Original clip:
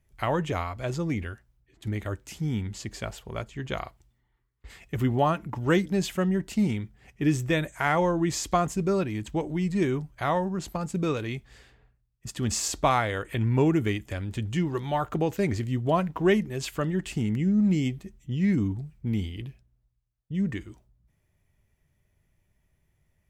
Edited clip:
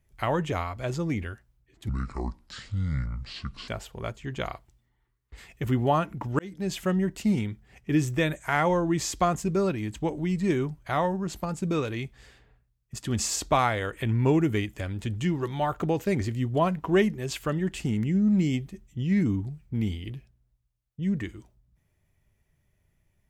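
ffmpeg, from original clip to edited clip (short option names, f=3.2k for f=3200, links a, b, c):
-filter_complex "[0:a]asplit=4[a][b][c][d];[a]atrim=end=1.894[e];[b]atrim=start=1.89:end=3,asetpts=PTS-STARTPTS,asetrate=27342,aresample=44100,atrim=end_sample=78953,asetpts=PTS-STARTPTS[f];[c]atrim=start=2.996:end=5.71,asetpts=PTS-STARTPTS,afade=t=out:st=2.71:d=0.004:c=hsin[g];[d]atrim=start=5.71,asetpts=PTS-STARTPTS,afade=t=in:d=0.44[h];[e][f]acrossfade=d=0.004:c1=hsin:c2=hsin[i];[g][h]concat=n=2:v=0:a=1[j];[i][j]acrossfade=d=0.004:c1=hsin:c2=hsin"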